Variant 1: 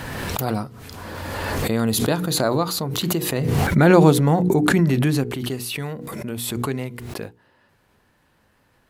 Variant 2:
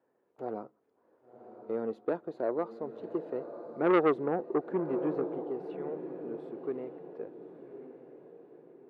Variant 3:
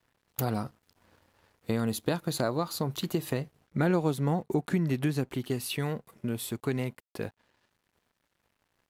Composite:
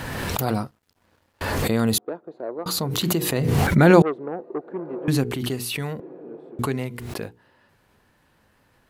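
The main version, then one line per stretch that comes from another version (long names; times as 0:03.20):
1
0:00.65–0:01.41: punch in from 3
0:01.98–0:02.66: punch in from 2
0:04.02–0:05.08: punch in from 2
0:06.00–0:06.59: punch in from 2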